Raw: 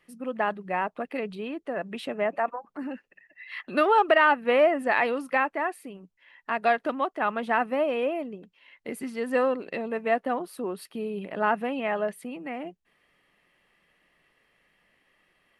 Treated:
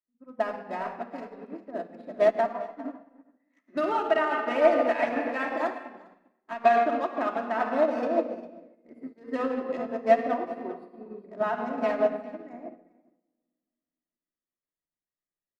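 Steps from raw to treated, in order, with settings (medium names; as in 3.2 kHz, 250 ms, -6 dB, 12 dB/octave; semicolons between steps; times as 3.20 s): local Wiener filter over 15 samples; simulated room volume 3400 m³, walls mixed, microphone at 2.8 m; peak limiter -15.5 dBFS, peak gain reduction 11.5 dB; treble shelf 10 kHz -3.5 dB, from 6.54 s -12 dB; delay 401 ms -10.5 dB; dynamic bell 670 Hz, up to +5 dB, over -41 dBFS, Q 7.1; upward expansion 2.5:1, over -43 dBFS; trim +3.5 dB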